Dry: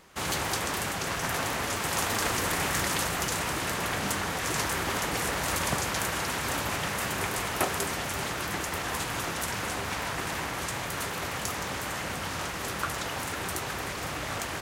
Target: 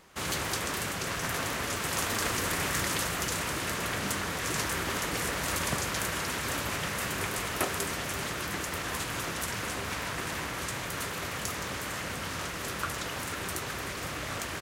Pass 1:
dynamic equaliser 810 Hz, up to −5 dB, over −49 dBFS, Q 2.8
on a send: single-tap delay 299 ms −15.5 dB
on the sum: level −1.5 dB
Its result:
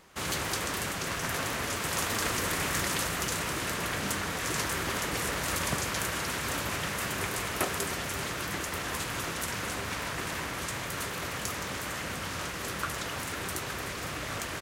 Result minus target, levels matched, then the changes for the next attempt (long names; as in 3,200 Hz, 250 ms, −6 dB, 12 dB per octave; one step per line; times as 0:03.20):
echo 185 ms early
change: single-tap delay 484 ms −15.5 dB